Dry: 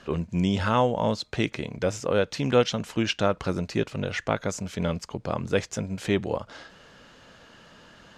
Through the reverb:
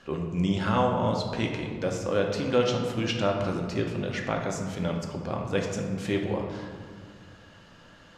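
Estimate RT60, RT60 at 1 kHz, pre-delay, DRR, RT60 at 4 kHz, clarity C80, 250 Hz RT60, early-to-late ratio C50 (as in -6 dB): 1.9 s, 1.9 s, 4 ms, 1.0 dB, 1.0 s, 6.0 dB, 2.6 s, 4.0 dB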